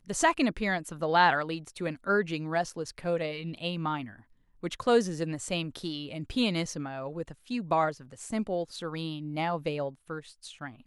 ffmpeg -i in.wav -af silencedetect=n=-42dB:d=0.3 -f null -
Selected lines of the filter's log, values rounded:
silence_start: 4.14
silence_end: 4.63 | silence_duration: 0.49